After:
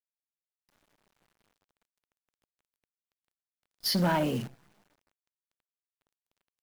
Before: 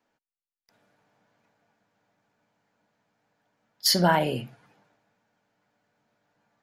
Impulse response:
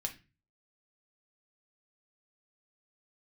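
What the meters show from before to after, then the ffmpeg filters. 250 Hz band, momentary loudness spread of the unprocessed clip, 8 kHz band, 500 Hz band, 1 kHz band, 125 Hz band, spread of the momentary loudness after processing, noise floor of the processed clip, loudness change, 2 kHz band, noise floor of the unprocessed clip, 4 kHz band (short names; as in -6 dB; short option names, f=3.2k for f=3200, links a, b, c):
-1.5 dB, 11 LU, -9.5 dB, -5.0 dB, -7.0 dB, -2.5 dB, 11 LU, under -85 dBFS, -5.0 dB, -6.5 dB, under -85 dBFS, -7.0 dB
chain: -filter_complex "[0:a]equalizer=f=7.3k:t=o:w=0.37:g=-15,acrossover=split=330[a][b];[a]dynaudnorm=f=240:g=5:m=7dB[c];[c][b]amix=inputs=2:normalize=0,flanger=delay=3.1:depth=3:regen=51:speed=1.2:shape=sinusoidal,asoftclip=type=tanh:threshold=-21dB,acrusher=bits=8:dc=4:mix=0:aa=0.000001"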